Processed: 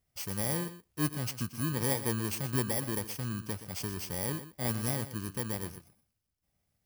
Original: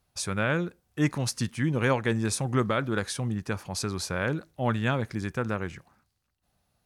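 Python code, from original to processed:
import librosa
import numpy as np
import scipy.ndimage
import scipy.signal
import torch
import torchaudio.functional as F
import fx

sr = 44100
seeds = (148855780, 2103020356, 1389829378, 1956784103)

p1 = fx.bit_reversed(x, sr, seeds[0], block=32)
p2 = p1 + fx.echo_single(p1, sr, ms=122, db=-13.0, dry=0)
y = p2 * librosa.db_to_amplitude(-6.0)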